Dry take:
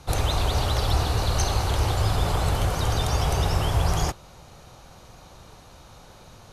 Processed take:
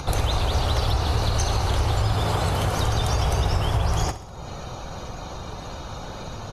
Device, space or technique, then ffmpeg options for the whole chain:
upward and downward compression: -filter_complex "[0:a]asettb=1/sr,asplit=3[a][b][c];[a]atrim=end=2.154[d];[b]atrim=start=2.15:end=2.78,asetpts=PTS-STARTPTS,afade=t=in:d=0.004:c=qsin,afade=t=out:st=0.626:d=0.004:c=qsin,highpass=72[e];[c]atrim=start=2.776[f];[d][e]acrossfade=d=0.004:c1=hsin:c2=qsin[g];[g][f]acrossfade=d=0.004:c1=qsin:c2=hsin,acompressor=mode=upward:threshold=-30dB:ratio=2.5,acompressor=threshold=-25dB:ratio=4,afftdn=nr=14:nf=-50,aecho=1:1:66|132|198|264|330|396:0.211|0.118|0.0663|0.0371|0.0208|0.0116,volume=5.5dB"

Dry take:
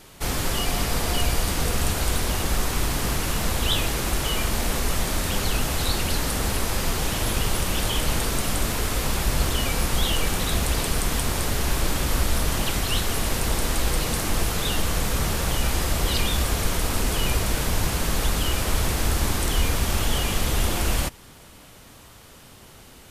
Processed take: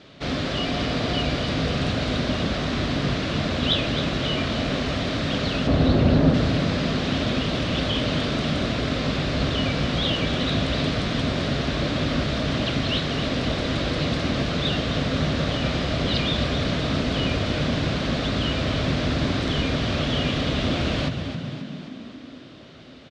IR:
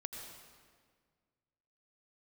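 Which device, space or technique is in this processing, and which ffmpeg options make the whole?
frequency-shifting delay pedal into a guitar cabinet: -filter_complex "[0:a]asettb=1/sr,asplit=3[a][b][c];[a]atrim=end=5.674[d];[b]atrim=start=5.67:end=6.34,asetpts=PTS-STARTPTS,afade=t=in:d=0.004:c=qsin,afade=t=out:st=0.666:d=0.004:c=qsin,tiltshelf=f=1.4k:g=9[e];[c]atrim=start=6.336[f];[d][e]acrossfade=d=0.004:c1=hsin:c2=qsin[g];[g][f]acrossfade=d=0.004:c1=qsin:c2=hsin,asplit=8[h][i][j][k][l][m][n][o];[i]adelay=266,afreqshift=45,volume=-9.5dB[p];[j]adelay=532,afreqshift=90,volume=-14.2dB[q];[k]adelay=798,afreqshift=135,volume=-19dB[r];[l]adelay=1064,afreqshift=180,volume=-23.7dB[s];[m]adelay=1330,afreqshift=225,volume=-28.4dB[t];[n]adelay=1596,afreqshift=270,volume=-33.2dB[u];[o]adelay=1862,afreqshift=315,volume=-37.9dB[v];[h][p][q][r][s][t][u][v]amix=inputs=8:normalize=0,highpass=79,equalizer=f=150:t=q:w=4:g=5,equalizer=f=260:t=q:w=4:g=9,equalizer=f=610:t=q:w=4:g=7,equalizer=f=890:t=q:w=4:g=-8,equalizer=f=3.7k:t=q:w=4:g=4,lowpass=f=4.6k:w=0.5412,lowpass=f=4.6k:w=1.3066"

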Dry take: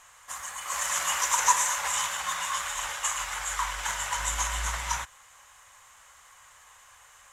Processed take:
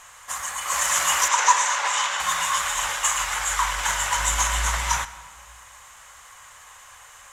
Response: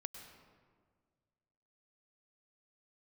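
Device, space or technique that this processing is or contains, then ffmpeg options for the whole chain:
saturated reverb return: -filter_complex "[0:a]asplit=2[a][b];[1:a]atrim=start_sample=2205[c];[b][c]afir=irnorm=-1:irlink=0,asoftclip=type=tanh:threshold=-29.5dB,volume=-3dB[d];[a][d]amix=inputs=2:normalize=0,asettb=1/sr,asplit=3[e][f][g];[e]atrim=end=1.284[h];[f]atrim=start=1.28:end=2.2,asetpts=PTS-STARTPTS,afade=t=in:d=0.004:c=qsin,afade=t=out:st=0.916:d=0.004:c=qsin,acrossover=split=260 7300:gain=0.112 1 0.0631[i][j][k];[i][j][k]amix=inputs=3:normalize=0[l];[g]atrim=start=2.196[m];[h][l]acrossfade=d=0.004:c1=hsin:c2=qsin[n];[n][m]acrossfade=d=0.004:c1=qsin:c2=hsin,volume=4.5dB"

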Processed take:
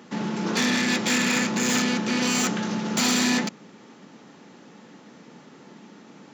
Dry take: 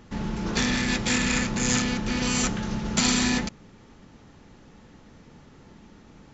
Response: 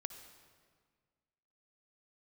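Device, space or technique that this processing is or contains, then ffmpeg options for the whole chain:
saturation between pre-emphasis and de-emphasis: -af "highshelf=f=3.9k:g=9.5,asoftclip=type=tanh:threshold=-18.5dB,highpass=f=180:w=0.5412,highpass=f=180:w=1.3066,highshelf=f=3.9k:g=-9.5,volume=5dB"

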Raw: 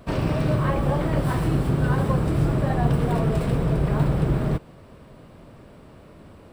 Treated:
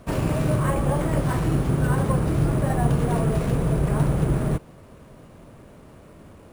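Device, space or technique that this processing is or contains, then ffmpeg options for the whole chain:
crushed at another speed: -af "asetrate=22050,aresample=44100,acrusher=samples=9:mix=1:aa=0.000001,asetrate=88200,aresample=44100"

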